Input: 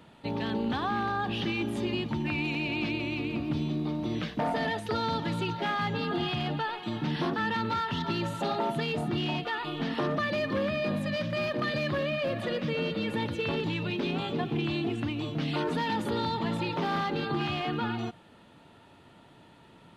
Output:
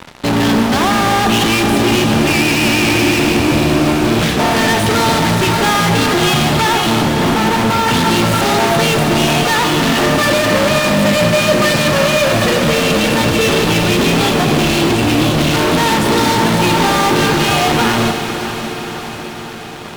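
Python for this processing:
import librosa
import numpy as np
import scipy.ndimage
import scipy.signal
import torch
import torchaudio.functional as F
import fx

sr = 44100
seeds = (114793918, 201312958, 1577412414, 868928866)

y = fx.lowpass(x, sr, hz=1000.0, slope=12, at=(7.02, 7.88))
y = fx.fuzz(y, sr, gain_db=46.0, gate_db=-50.0)
y = fx.echo_diffused(y, sr, ms=580, feedback_pct=63, wet_db=-10.0)
y = fx.rev_schroeder(y, sr, rt60_s=3.8, comb_ms=28, drr_db=6.0)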